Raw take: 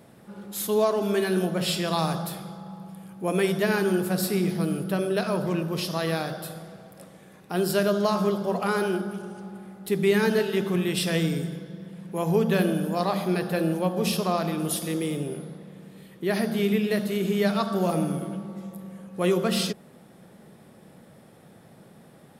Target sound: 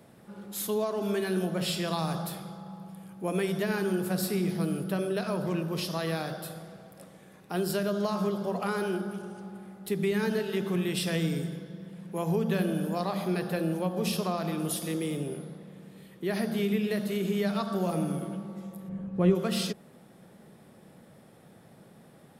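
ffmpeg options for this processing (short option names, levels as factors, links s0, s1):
-filter_complex "[0:a]acrossover=split=210[s0][s1];[s1]acompressor=threshold=0.0562:ratio=3[s2];[s0][s2]amix=inputs=2:normalize=0,asplit=3[s3][s4][s5];[s3]afade=t=out:st=18.88:d=0.02[s6];[s4]aemphasis=mode=reproduction:type=riaa,afade=t=in:st=18.88:d=0.02,afade=t=out:st=19.34:d=0.02[s7];[s5]afade=t=in:st=19.34:d=0.02[s8];[s6][s7][s8]amix=inputs=3:normalize=0,volume=0.708"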